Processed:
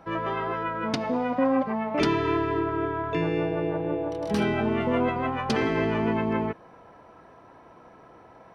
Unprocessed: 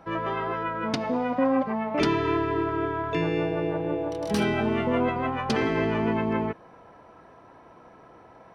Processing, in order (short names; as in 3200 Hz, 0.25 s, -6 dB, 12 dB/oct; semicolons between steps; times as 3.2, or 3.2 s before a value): 2.59–4.81 high shelf 4300 Hz -7.5 dB